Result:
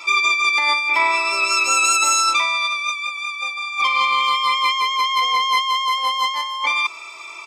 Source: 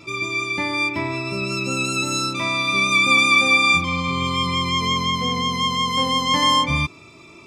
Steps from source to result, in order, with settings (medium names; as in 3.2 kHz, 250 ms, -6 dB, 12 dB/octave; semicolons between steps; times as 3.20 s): high-pass 610 Hz 24 dB/octave; comb 0.9 ms, depth 49%; compressor with a negative ratio -25 dBFS, ratio -1; trim +4.5 dB